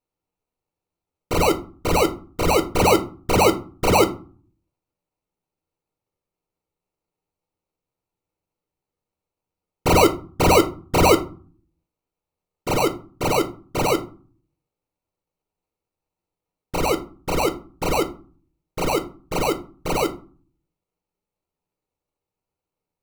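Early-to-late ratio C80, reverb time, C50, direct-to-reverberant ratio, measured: 20.5 dB, 0.40 s, 15.5 dB, 6.0 dB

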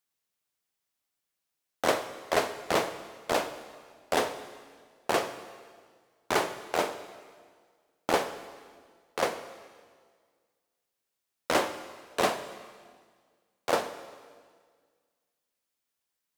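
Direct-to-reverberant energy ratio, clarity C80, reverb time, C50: 11.0 dB, 12.5 dB, 1.8 s, 11.5 dB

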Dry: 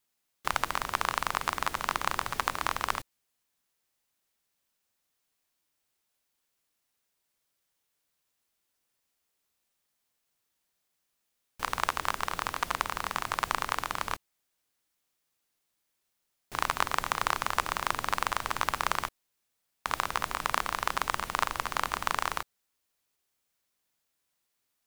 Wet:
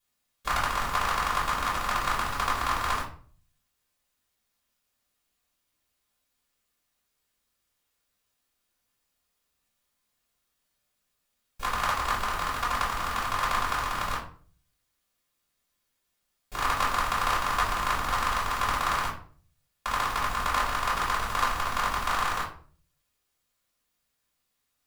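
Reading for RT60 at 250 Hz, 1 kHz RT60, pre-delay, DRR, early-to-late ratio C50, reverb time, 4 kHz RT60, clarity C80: 0.60 s, 0.40 s, 3 ms, -8.0 dB, 6.5 dB, 0.45 s, 0.30 s, 11.5 dB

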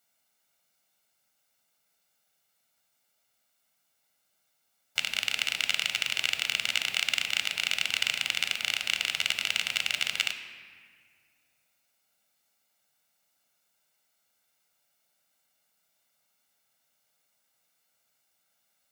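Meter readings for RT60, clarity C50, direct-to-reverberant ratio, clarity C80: 1.8 s, 9.5 dB, 8.0 dB, 10.5 dB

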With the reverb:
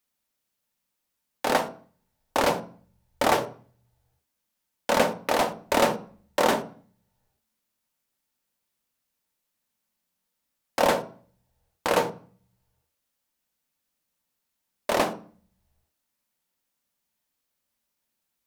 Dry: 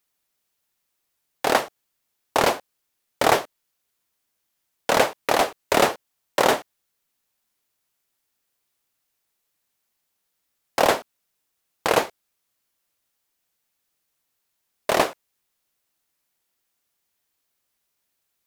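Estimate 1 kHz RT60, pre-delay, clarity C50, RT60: 0.45 s, 3 ms, 14.5 dB, 0.40 s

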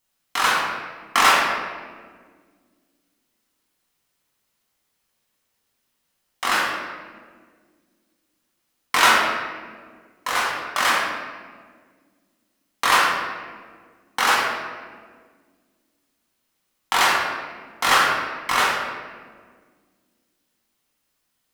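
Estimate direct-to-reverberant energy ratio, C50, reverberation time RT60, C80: -4.5 dB, 0.0 dB, 1.7 s, 2.5 dB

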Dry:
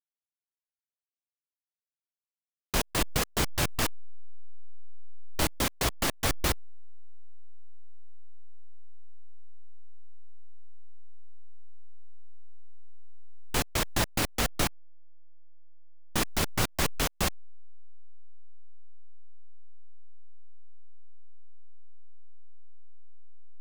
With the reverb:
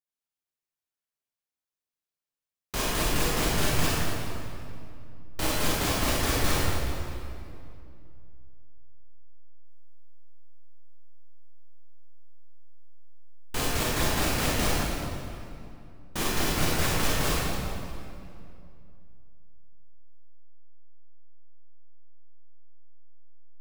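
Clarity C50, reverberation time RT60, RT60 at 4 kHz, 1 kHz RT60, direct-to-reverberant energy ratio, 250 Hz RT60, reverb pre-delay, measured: -4.5 dB, 2.5 s, 1.8 s, 2.4 s, -7.5 dB, 3.1 s, 26 ms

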